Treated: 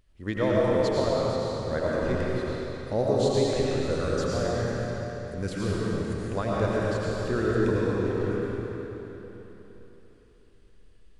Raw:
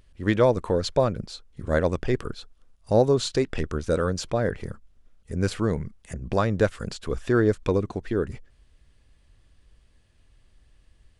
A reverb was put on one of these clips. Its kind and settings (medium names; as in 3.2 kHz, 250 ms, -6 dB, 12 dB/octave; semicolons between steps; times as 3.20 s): algorithmic reverb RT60 3.7 s, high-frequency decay 0.9×, pre-delay 60 ms, DRR -6.5 dB; trim -8.5 dB